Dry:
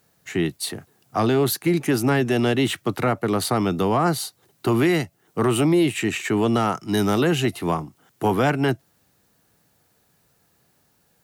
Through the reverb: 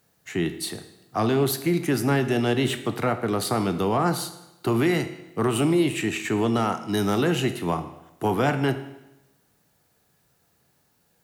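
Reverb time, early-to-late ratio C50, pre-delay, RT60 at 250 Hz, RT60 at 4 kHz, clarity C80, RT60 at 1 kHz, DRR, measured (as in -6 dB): 0.95 s, 11.5 dB, 22 ms, 0.95 s, 0.90 s, 13.5 dB, 0.95 s, 9.0 dB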